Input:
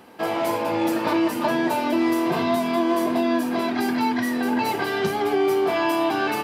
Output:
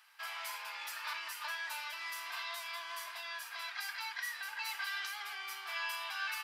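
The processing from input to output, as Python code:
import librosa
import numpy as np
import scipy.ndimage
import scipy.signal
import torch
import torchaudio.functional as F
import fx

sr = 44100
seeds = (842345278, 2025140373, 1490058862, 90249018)

y = scipy.signal.sosfilt(scipy.signal.butter(4, 1300.0, 'highpass', fs=sr, output='sos'), x)
y = fx.peak_eq(y, sr, hz=5100.0, db=3.0, octaves=0.48)
y = y * librosa.db_to_amplitude(-8.5)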